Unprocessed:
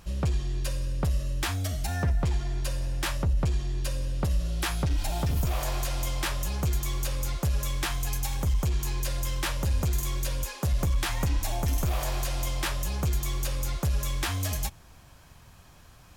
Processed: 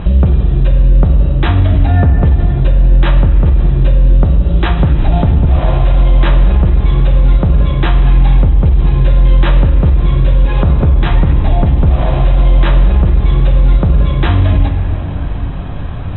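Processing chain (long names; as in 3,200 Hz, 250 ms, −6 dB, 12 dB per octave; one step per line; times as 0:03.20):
Chebyshev low-pass filter 3,900 Hz, order 10
tilt shelving filter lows +6.5 dB, about 780 Hz
downward compressor 5 to 1, threshold −34 dBFS, peak gain reduction 16 dB
on a send at −5 dB: convolution reverb RT60 3.4 s, pre-delay 5 ms
on the sum: boost into a limiter +26.5 dB
level −1 dB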